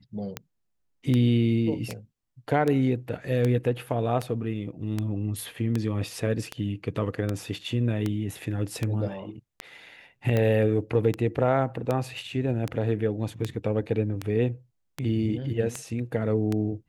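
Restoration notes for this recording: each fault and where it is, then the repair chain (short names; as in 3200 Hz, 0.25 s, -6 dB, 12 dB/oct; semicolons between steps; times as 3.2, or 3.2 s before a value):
tick 78 rpm -14 dBFS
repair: de-click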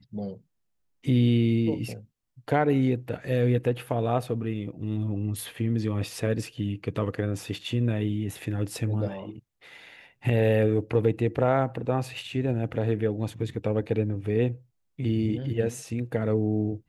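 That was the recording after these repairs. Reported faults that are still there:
none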